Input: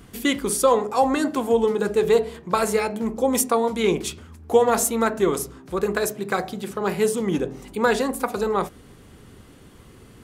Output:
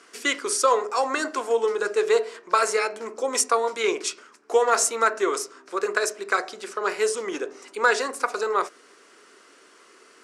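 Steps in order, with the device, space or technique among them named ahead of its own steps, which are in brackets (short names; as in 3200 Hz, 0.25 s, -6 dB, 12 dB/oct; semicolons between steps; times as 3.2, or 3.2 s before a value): phone speaker on a table (speaker cabinet 420–8800 Hz, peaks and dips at 520 Hz -6 dB, 800 Hz -9 dB, 1400 Hz +4 dB, 3400 Hz -6 dB, 5400 Hz +5 dB); gain +2.5 dB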